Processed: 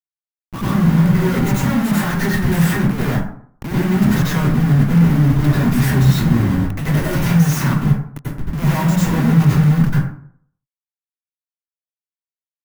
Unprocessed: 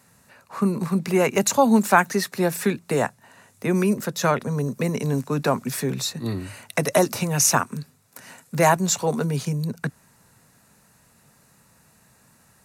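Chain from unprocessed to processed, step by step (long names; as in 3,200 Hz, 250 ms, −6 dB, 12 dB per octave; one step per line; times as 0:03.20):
comparator with hysteresis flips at −33 dBFS
octave-band graphic EQ 125/250/500/4,000/8,000 Hz +6/+6/−9/−5/−6 dB
dense smooth reverb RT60 0.58 s, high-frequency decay 0.5×, pre-delay 80 ms, DRR −8 dB
level −3.5 dB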